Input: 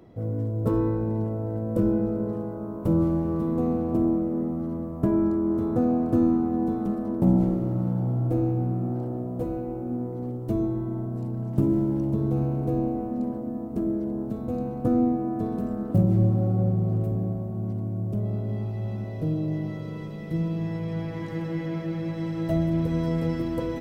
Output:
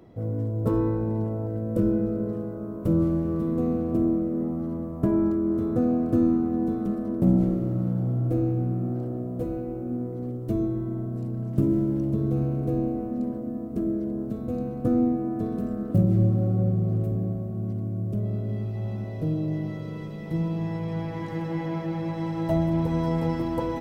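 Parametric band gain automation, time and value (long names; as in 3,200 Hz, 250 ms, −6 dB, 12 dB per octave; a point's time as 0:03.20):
parametric band 880 Hz 0.38 octaves
0 dB
from 0:01.47 −11.5 dB
from 0:04.41 −2.5 dB
from 0:05.32 −10.5 dB
from 0:18.75 −1 dB
from 0:20.26 +8 dB
from 0:21.51 +14 dB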